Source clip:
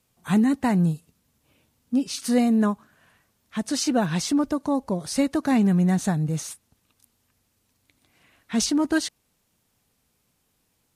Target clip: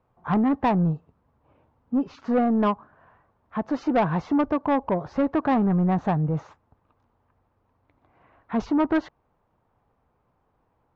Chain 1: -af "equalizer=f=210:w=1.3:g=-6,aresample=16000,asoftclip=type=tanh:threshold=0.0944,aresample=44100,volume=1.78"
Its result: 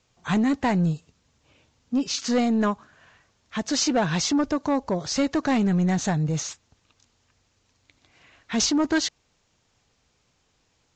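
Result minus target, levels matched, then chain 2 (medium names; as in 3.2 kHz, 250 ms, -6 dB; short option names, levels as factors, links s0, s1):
1 kHz band -3.5 dB
-af "lowpass=f=1000:t=q:w=1.7,equalizer=f=210:w=1.3:g=-6,aresample=16000,asoftclip=type=tanh:threshold=0.0944,aresample=44100,volume=1.78"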